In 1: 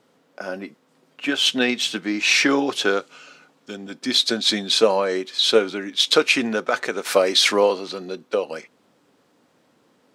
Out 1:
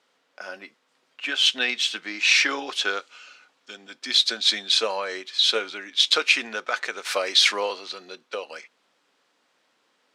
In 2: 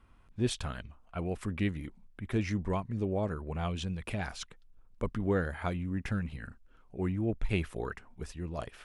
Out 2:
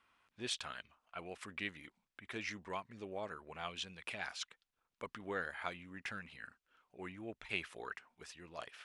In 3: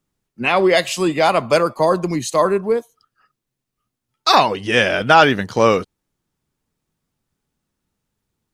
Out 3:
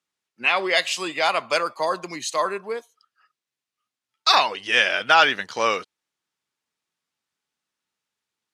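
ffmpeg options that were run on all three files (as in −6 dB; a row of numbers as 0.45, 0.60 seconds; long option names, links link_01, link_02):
-af "bandpass=frequency=3100:width_type=q:width=0.53:csg=0"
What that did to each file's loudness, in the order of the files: −2.0, −9.5, −4.5 LU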